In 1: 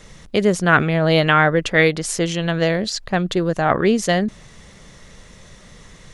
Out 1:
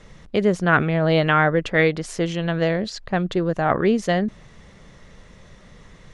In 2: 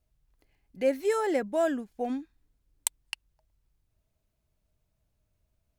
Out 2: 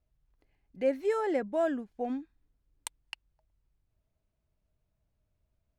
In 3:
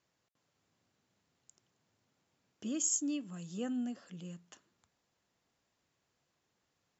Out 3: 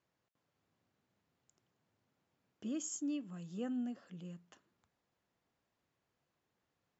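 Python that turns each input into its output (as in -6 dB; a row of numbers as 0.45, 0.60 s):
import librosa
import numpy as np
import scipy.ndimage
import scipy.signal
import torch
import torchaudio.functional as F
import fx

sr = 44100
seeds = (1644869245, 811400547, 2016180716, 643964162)

y = fx.lowpass(x, sr, hz=2500.0, slope=6)
y = y * 10.0 ** (-2.0 / 20.0)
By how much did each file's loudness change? -3.0, -2.0, -5.5 LU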